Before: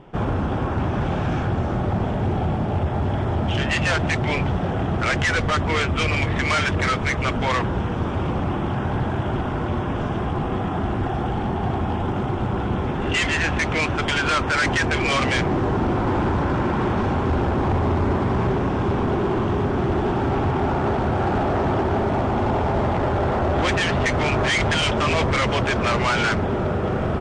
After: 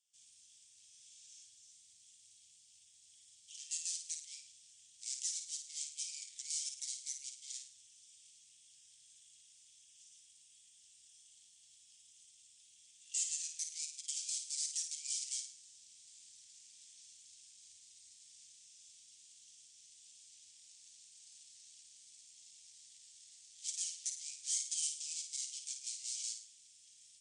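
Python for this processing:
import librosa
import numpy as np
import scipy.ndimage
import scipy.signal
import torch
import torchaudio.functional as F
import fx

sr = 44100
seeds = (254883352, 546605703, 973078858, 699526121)

y = scipy.signal.sosfilt(scipy.signal.cheby2(4, 80, 1400.0, 'highpass', fs=sr, output='sos'), x)
y = fx.air_absorb(y, sr, metres=57.0)
y = fx.room_flutter(y, sr, wall_m=9.2, rt60_s=0.47)
y = y * 10.0 ** (10.0 / 20.0)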